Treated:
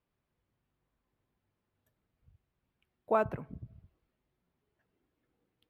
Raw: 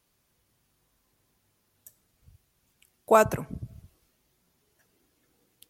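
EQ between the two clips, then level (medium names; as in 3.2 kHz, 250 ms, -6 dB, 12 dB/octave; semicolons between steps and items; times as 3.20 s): distance through air 430 m; treble shelf 10 kHz +10.5 dB; -7.5 dB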